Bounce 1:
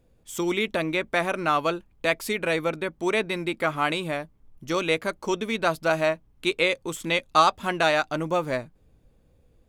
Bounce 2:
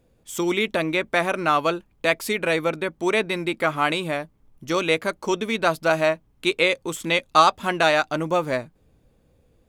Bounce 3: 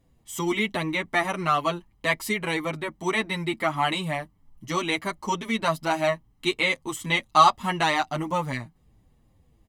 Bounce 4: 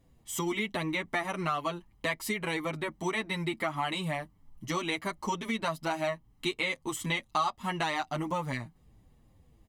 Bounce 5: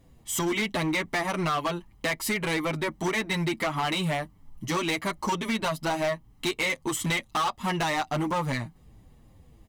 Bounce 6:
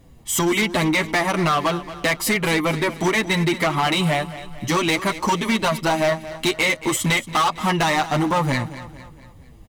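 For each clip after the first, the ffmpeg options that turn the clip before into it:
-af "lowshelf=f=65:g=-7.5,volume=3dB"
-filter_complex "[0:a]aecho=1:1:1:0.57,asplit=2[a][b];[b]adelay=7.2,afreqshift=-3[c];[a][c]amix=inputs=2:normalize=1"
-af "acompressor=threshold=-30dB:ratio=3"
-af "asoftclip=type=hard:threshold=-30dB,volume=7dB"
-af "aecho=1:1:227|454|681|908:0.188|0.0885|0.0416|0.0196,volume=7.5dB"

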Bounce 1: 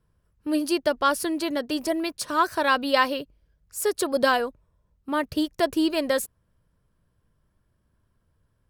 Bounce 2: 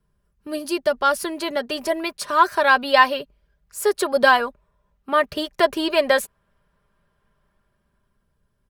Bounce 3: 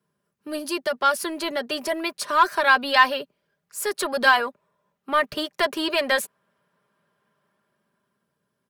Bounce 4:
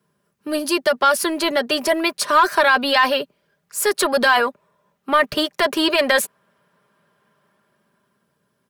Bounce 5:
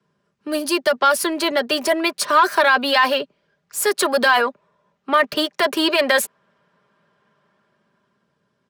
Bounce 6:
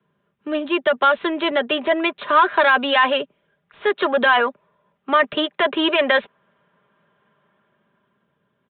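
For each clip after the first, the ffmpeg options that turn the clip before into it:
-filter_complex "[0:a]aecho=1:1:5:0.51,acrossover=split=500|3500[a][b][c];[b]dynaudnorm=f=220:g=11:m=10.5dB[d];[a][d][c]amix=inputs=3:normalize=0,volume=-1dB"
-filter_complex "[0:a]acrossover=split=140|950[a][b][c];[a]acrusher=bits=4:dc=4:mix=0:aa=0.000001[d];[b]asoftclip=type=tanh:threshold=-23.5dB[e];[d][e][c]amix=inputs=3:normalize=0"
-af "alimiter=limit=-14dB:level=0:latency=1:release=17,volume=7.5dB"
-filter_complex "[0:a]acrossover=split=160|640|7500[a][b][c][d];[a]acompressor=threshold=-54dB:ratio=6[e];[d]acrusher=bits=6:mix=0:aa=0.000001[f];[e][b][c][f]amix=inputs=4:normalize=0"
-af "aresample=8000,aresample=44100"

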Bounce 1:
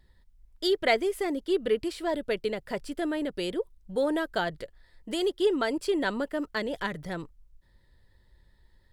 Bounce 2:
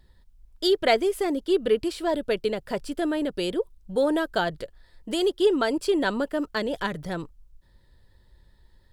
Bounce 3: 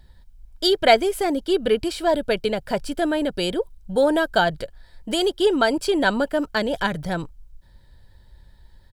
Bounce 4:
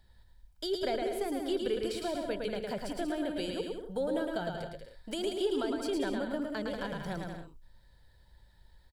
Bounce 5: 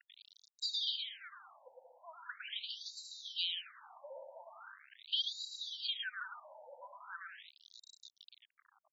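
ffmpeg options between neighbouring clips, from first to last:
-af "equalizer=f=2k:t=o:w=0.32:g=-5.5,volume=4dB"
-af "aecho=1:1:1.3:0.34,volume=5dB"
-filter_complex "[0:a]acrossover=split=490[a][b];[a]flanger=delay=9.7:depth=8.1:regen=-65:speed=0.95:shape=triangular[c];[b]acompressor=threshold=-31dB:ratio=6[d];[c][d]amix=inputs=2:normalize=0,aecho=1:1:110|187|240.9|278.6|305:0.631|0.398|0.251|0.158|0.1,volume=-8dB"
-af "firequalizer=gain_entry='entry(110,0);entry(210,-21);entry(370,-14);entry(720,-30);entry(1200,-3);entry(2100,-13);entry(3600,6);entry(5200,-11);entry(9800,5)':delay=0.05:min_phase=1,acrusher=bits=8:mix=0:aa=0.000001,afftfilt=real='re*between(b*sr/1024,670*pow(5400/670,0.5+0.5*sin(2*PI*0.41*pts/sr))/1.41,670*pow(5400/670,0.5+0.5*sin(2*PI*0.41*pts/sr))*1.41)':imag='im*between(b*sr/1024,670*pow(5400/670,0.5+0.5*sin(2*PI*0.41*pts/sr))/1.41,670*pow(5400/670,0.5+0.5*sin(2*PI*0.41*pts/sr))*1.41)':win_size=1024:overlap=0.75,volume=9dB"

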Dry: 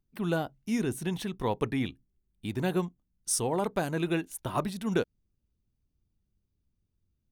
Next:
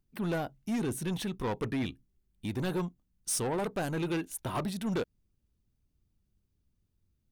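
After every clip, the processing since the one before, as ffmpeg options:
-af "asoftclip=type=tanh:threshold=-29dB,volume=2dB"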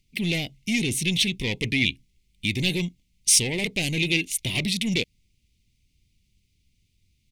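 -af "firequalizer=gain_entry='entry(150,0);entry(1400,-29);entry(2100,14);entry(16000,-3)':delay=0.05:min_phase=1,volume=7.5dB"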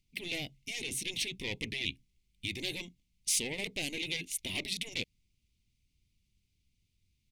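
-af "afftfilt=real='re*lt(hypot(re,im),0.282)':imag='im*lt(hypot(re,im),0.282)':win_size=1024:overlap=0.75,volume=-8.5dB"

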